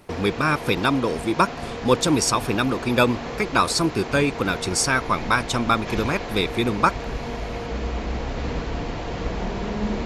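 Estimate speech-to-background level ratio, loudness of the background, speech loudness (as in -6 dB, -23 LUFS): 9.0 dB, -31.0 LUFS, -22.0 LUFS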